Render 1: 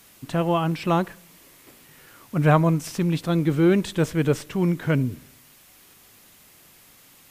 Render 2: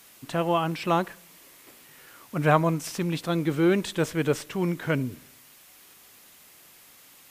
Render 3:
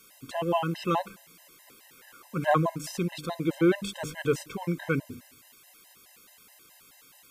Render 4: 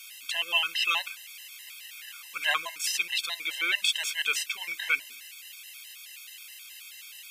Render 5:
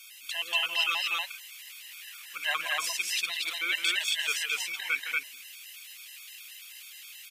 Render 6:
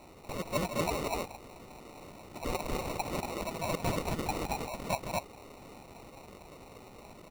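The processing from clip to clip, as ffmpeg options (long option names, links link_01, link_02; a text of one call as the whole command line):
ffmpeg -i in.wav -af "lowshelf=frequency=230:gain=-9.5" out.wav
ffmpeg -i in.wav -af "bandreject=frequency=50:width_type=h:width=6,bandreject=frequency=100:width_type=h:width=6,bandreject=frequency=150:width_type=h:width=6,bandreject=frequency=200:width_type=h:width=6,bandreject=frequency=250:width_type=h:width=6,bandreject=frequency=300:width_type=h:width=6,afftfilt=real='re*gt(sin(2*PI*4.7*pts/sr)*(1-2*mod(floor(b*sr/1024/530),2)),0)':imag='im*gt(sin(2*PI*4.7*pts/sr)*(1-2*mod(floor(b*sr/1024/530),2)),0)':win_size=1024:overlap=0.75" out.wav
ffmpeg -i in.wav -af "highpass=frequency=2600:width_type=q:width=2.6,volume=8.5dB" out.wav
ffmpeg -i in.wav -af "aecho=1:1:163.3|236.2:0.316|0.891,volume=-3.5dB" out.wav
ffmpeg -i in.wav -af "acrusher=samples=27:mix=1:aa=0.000001,volume=-3.5dB" out.wav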